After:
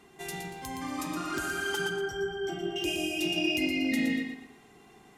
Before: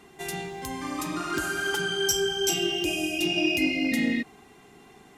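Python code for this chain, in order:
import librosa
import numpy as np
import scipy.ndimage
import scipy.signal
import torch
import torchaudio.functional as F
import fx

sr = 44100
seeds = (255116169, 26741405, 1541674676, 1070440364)

y = fx.savgol(x, sr, points=41, at=(1.89, 2.76))
y = fx.echo_feedback(y, sr, ms=118, feedback_pct=32, wet_db=-7.0)
y = F.gain(torch.from_numpy(y), -4.5).numpy()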